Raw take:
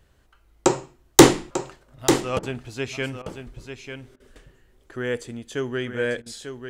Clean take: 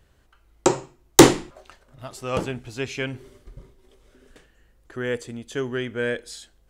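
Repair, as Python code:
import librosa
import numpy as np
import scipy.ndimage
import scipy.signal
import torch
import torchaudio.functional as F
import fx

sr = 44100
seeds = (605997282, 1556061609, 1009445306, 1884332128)

y = fx.fix_interpolate(x, sr, at_s=(2.39, 3.22, 4.16, 6.22), length_ms=39.0)
y = fx.fix_echo_inverse(y, sr, delay_ms=894, level_db=-8.5)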